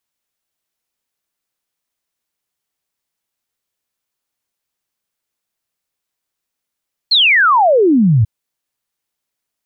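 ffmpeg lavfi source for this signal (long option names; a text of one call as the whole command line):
ffmpeg -f lavfi -i "aevalsrc='0.422*clip(min(t,1.14-t)/0.01,0,1)*sin(2*PI*4400*1.14/log(100/4400)*(exp(log(100/4400)*t/1.14)-1))':duration=1.14:sample_rate=44100" out.wav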